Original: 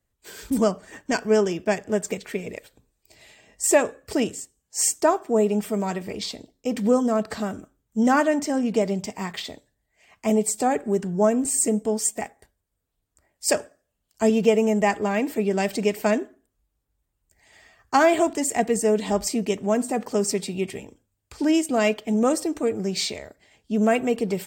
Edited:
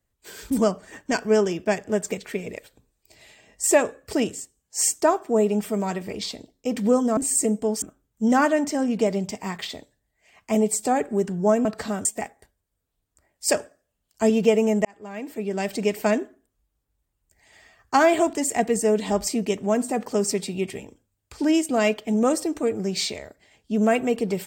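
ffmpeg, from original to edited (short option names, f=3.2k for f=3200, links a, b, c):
-filter_complex "[0:a]asplit=6[a][b][c][d][e][f];[a]atrim=end=7.172[g];[b]atrim=start=11.398:end=12.052[h];[c]atrim=start=7.568:end=11.402[i];[d]atrim=start=7.168:end=7.572[j];[e]atrim=start=12.048:end=14.85,asetpts=PTS-STARTPTS,afade=t=out:st=2.798:d=0.004:c=hsin[k];[f]atrim=start=14.85,asetpts=PTS-STARTPTS,afade=t=in:d=1.1[l];[g][h]acrossfade=d=0.004:c1=hsin:c2=hsin[m];[m][i]acrossfade=d=0.004:c1=hsin:c2=hsin[n];[n][j]acrossfade=d=0.004:c1=hsin:c2=hsin[o];[k][l]concat=n=2:v=0:a=1[p];[o][p]acrossfade=d=0.004:c1=hsin:c2=hsin"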